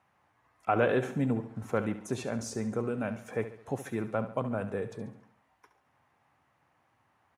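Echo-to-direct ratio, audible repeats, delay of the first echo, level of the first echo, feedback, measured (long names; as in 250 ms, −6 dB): −11.0 dB, 4, 70 ms, −12.0 dB, 46%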